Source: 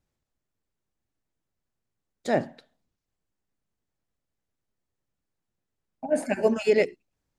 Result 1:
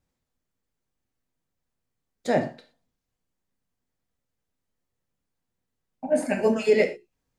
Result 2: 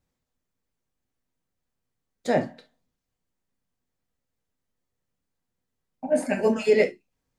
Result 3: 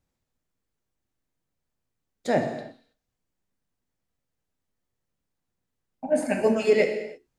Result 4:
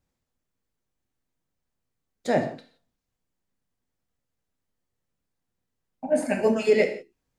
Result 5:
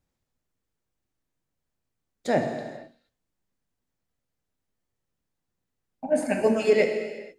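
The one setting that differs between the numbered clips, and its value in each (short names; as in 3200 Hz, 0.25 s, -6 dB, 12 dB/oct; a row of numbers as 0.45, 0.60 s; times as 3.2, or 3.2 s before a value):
non-linear reverb, gate: 140, 90, 350, 200, 510 ms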